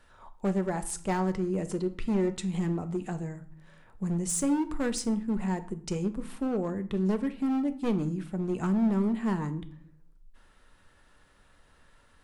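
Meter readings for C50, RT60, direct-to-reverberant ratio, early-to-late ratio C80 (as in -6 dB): 15.5 dB, 0.55 s, 9.0 dB, 19.5 dB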